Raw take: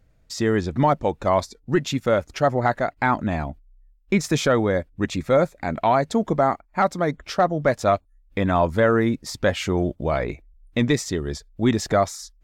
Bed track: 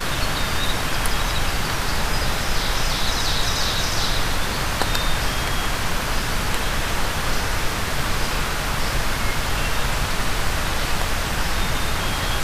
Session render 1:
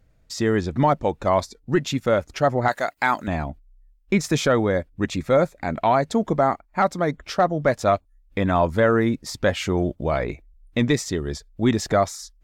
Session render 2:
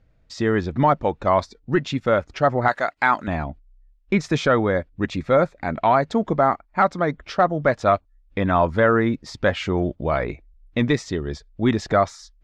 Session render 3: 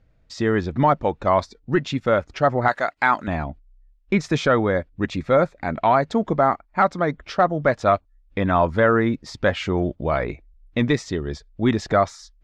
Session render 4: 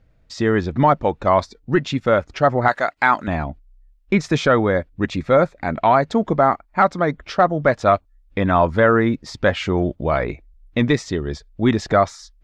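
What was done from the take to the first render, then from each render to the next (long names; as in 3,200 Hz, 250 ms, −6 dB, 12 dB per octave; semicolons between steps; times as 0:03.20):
0:02.68–0:03.28: RIAA equalisation recording
low-pass filter 4,400 Hz 12 dB per octave; dynamic equaliser 1,300 Hz, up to +4 dB, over −32 dBFS, Q 1.4
no processing that can be heard
level +2.5 dB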